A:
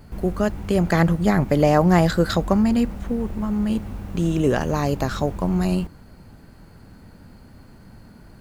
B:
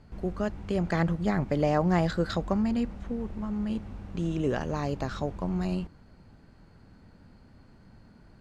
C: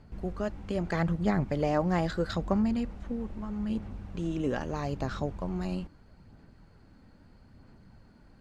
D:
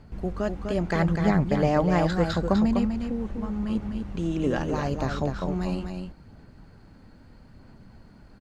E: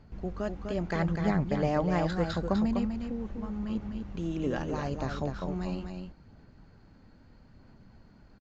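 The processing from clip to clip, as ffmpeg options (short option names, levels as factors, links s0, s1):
-af "lowpass=6100,volume=0.376"
-af "aphaser=in_gain=1:out_gain=1:delay=3.8:decay=0.27:speed=0.78:type=sinusoidal,volume=0.75"
-af "aecho=1:1:250:0.501,volume=1.68"
-af "aresample=16000,aresample=44100,volume=0.531"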